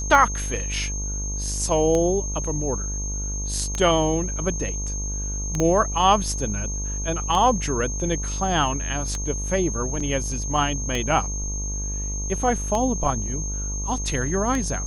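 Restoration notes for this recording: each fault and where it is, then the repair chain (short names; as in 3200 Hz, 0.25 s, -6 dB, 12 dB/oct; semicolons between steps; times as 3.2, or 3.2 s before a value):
buzz 50 Hz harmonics 24 -29 dBFS
tick 33 1/3 rpm -12 dBFS
tone 6400 Hz -30 dBFS
5.6 pop -11 dBFS
10–10.01 gap 5.3 ms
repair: de-click; notch 6400 Hz, Q 30; de-hum 50 Hz, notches 24; interpolate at 10, 5.3 ms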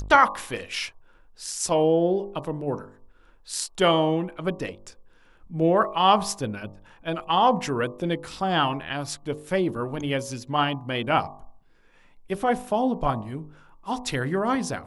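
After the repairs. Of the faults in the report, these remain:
5.6 pop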